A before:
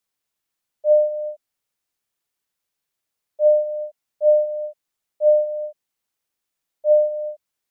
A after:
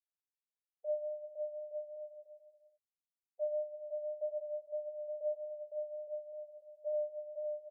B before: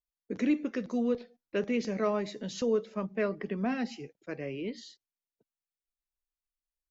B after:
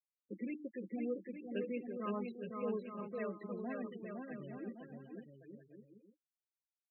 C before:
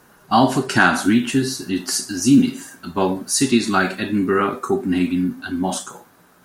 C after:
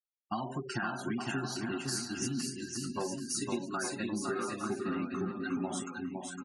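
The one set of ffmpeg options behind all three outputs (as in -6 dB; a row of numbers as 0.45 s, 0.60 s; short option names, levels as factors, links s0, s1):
-af "flanger=delay=7.1:depth=2.6:regen=14:speed=1.6:shape=triangular,agate=range=0.0224:threshold=0.00891:ratio=3:detection=peak,aecho=1:1:5.7:0.39,acompressor=threshold=0.0631:ratio=12,afftfilt=real='re*gte(hypot(re,im),0.0251)':imag='im*gte(hypot(re,im),0.0251)':win_size=1024:overlap=0.75,aecho=1:1:510|867|1117|1292|1414:0.631|0.398|0.251|0.158|0.1,volume=0.398"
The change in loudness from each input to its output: -21.0 LU, -10.5 LU, -17.0 LU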